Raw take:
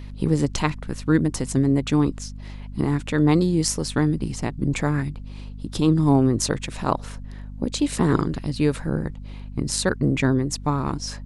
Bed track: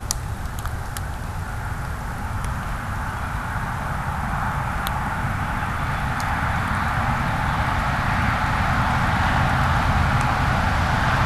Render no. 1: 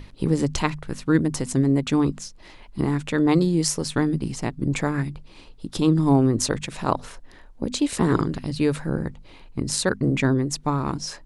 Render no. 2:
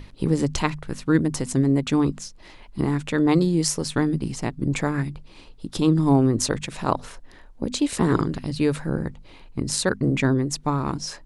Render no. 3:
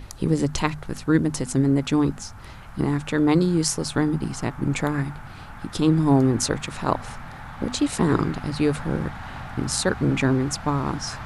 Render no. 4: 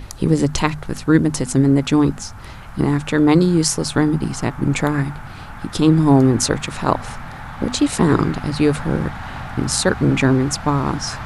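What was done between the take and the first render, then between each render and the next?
mains-hum notches 50/100/150/200/250 Hz
no processing that can be heard
mix in bed track −16.5 dB
level +5.5 dB; brickwall limiter −1 dBFS, peak gain reduction 1 dB

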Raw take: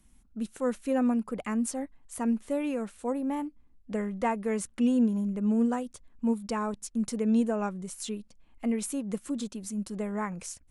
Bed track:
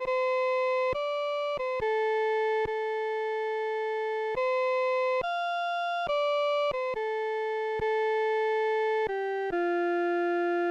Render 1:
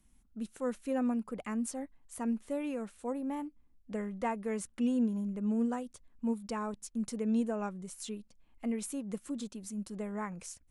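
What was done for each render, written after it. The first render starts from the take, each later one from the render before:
level −5.5 dB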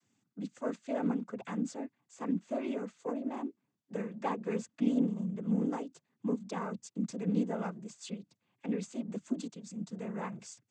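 phase distortion by the signal itself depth 0.069 ms
cochlear-implant simulation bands 16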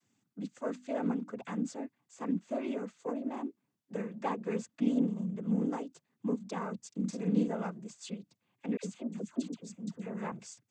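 0:00.58–0:01.42: mains-hum notches 50/100/150/200/250/300 Hz
0:06.88–0:07.48: double-tracking delay 43 ms −4.5 dB
0:08.77–0:10.32: all-pass dispersion lows, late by 70 ms, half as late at 1,100 Hz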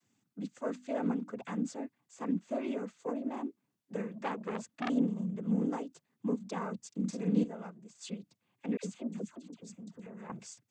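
0:04.12–0:04.90: saturating transformer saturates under 2,100 Hz
0:07.44–0:07.95: clip gain −8 dB
0:09.29–0:10.30: downward compressor, threshold −44 dBFS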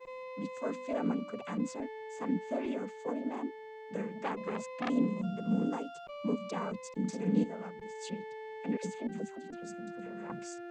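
mix in bed track −17 dB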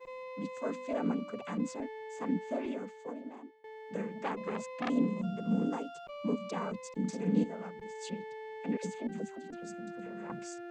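0:02.48–0:03.64: fade out, to −20.5 dB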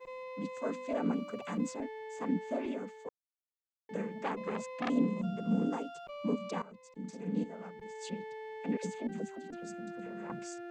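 0:01.13–0:01.70: high-shelf EQ 6,000 Hz +6.5 dB
0:03.09–0:03.89: silence
0:06.62–0:08.22: fade in, from −17 dB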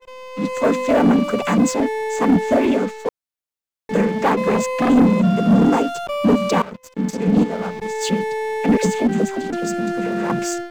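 automatic gain control gain up to 9.5 dB
leveller curve on the samples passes 3

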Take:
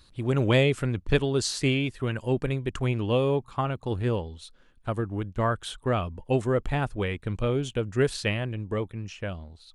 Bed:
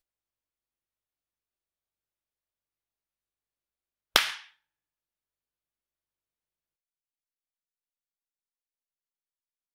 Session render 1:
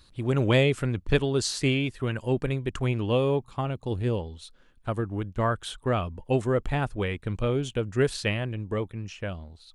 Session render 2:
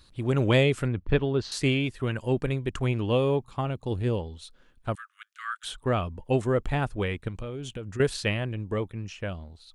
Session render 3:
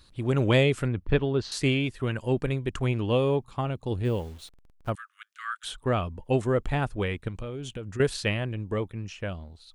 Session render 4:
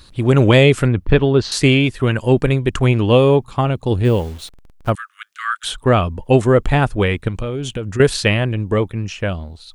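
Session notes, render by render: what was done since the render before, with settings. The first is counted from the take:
0:03.45–0:04.20: parametric band 1,300 Hz −6 dB 1.3 octaves
0:00.88–0:01.52: high-frequency loss of the air 270 metres; 0:04.95–0:05.64: Butterworth high-pass 1,200 Hz 96 dB per octave; 0:07.28–0:08.00: downward compressor, threshold −32 dBFS
0:04.05–0:04.90: hold until the input has moved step −49.5 dBFS
level +12 dB; brickwall limiter −2 dBFS, peak gain reduction 3 dB

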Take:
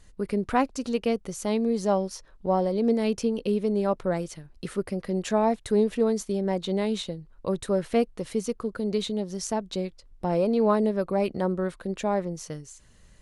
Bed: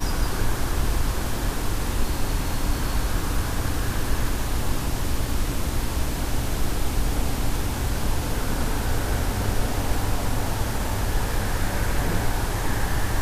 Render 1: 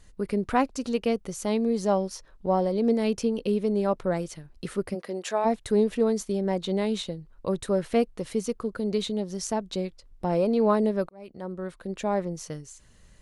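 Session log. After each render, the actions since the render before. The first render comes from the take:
0:04.94–0:05.44: high-pass filter 260 Hz → 590 Hz
0:11.09–0:12.19: fade in linear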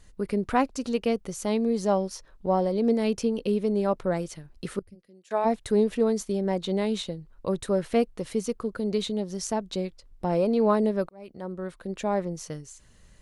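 0:04.79–0:05.31: guitar amp tone stack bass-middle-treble 10-0-1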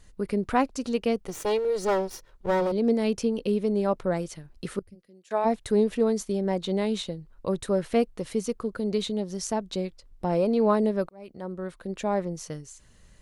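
0:01.27–0:02.72: lower of the sound and its delayed copy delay 2.1 ms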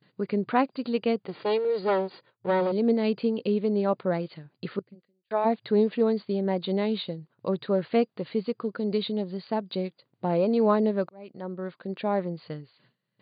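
noise gate with hold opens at −44 dBFS
brick-wall band-pass 110–4,800 Hz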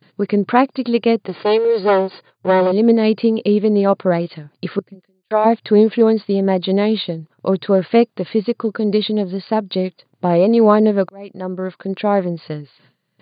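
level +10.5 dB
brickwall limiter −1 dBFS, peak gain reduction 1 dB

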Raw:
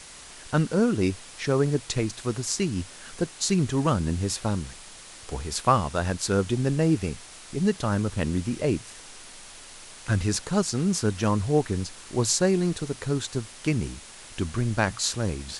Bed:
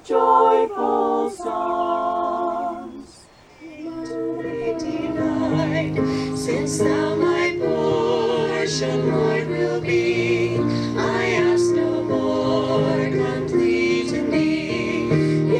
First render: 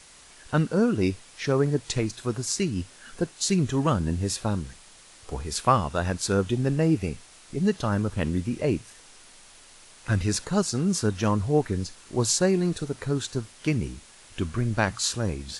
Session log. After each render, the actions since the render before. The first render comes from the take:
noise reduction from a noise print 6 dB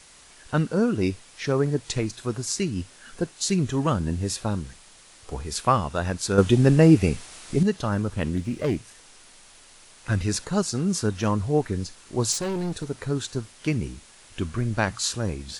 0:06.38–0:07.63: clip gain +7.5 dB
0:08.36–0:08.77: phase distortion by the signal itself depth 0.15 ms
0:12.32–0:12.85: hard clipping −25 dBFS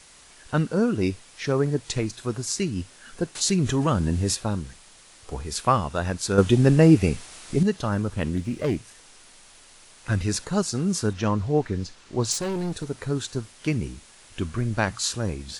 0:03.35–0:04.35: envelope flattener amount 50%
0:11.13–0:12.31: low-pass filter 6,100 Hz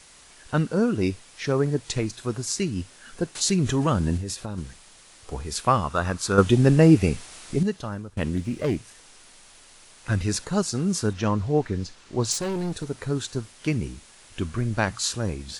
0:04.17–0:04.58: downward compressor, threshold −27 dBFS
0:05.83–0:06.43: parametric band 1,200 Hz +10 dB 0.44 octaves
0:07.44–0:08.17: fade out, to −17 dB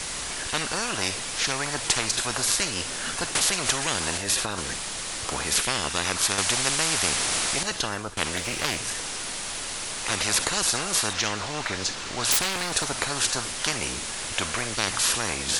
every bin compressed towards the loudest bin 10 to 1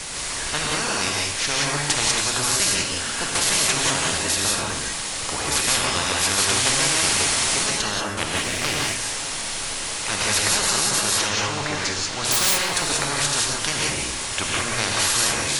reverb whose tail is shaped and stops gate 210 ms rising, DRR −2.5 dB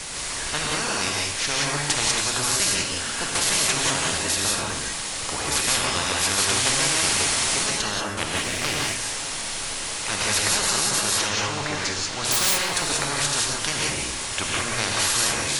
level −1.5 dB

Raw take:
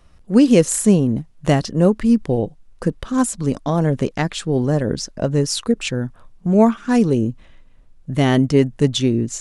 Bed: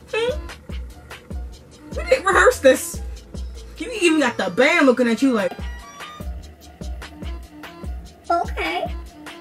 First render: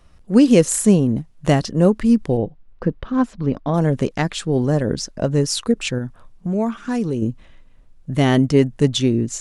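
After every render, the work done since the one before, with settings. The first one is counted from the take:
0:02.37–0:03.74: high-frequency loss of the air 270 metres
0:05.98–0:07.22: downward compressor 2 to 1, threshold −22 dBFS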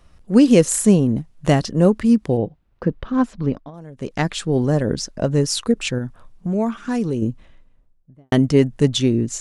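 0:02.01–0:02.90: high-pass filter 43 Hz
0:03.47–0:04.20: duck −20.5 dB, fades 0.24 s
0:07.18–0:08.32: fade out and dull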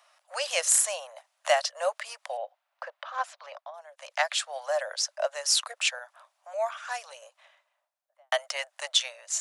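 Butterworth high-pass 580 Hz 96 dB per octave
dynamic equaliser 950 Hz, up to −4 dB, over −40 dBFS, Q 2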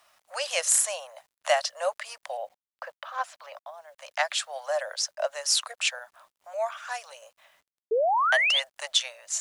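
bit reduction 11 bits
0:07.91–0:08.60: sound drawn into the spectrogram rise 420–3,700 Hz −23 dBFS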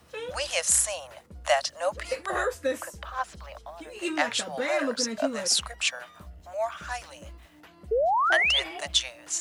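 mix in bed −15 dB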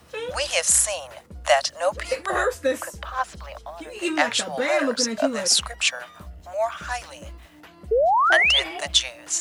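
level +5 dB
brickwall limiter −2 dBFS, peak gain reduction 3 dB

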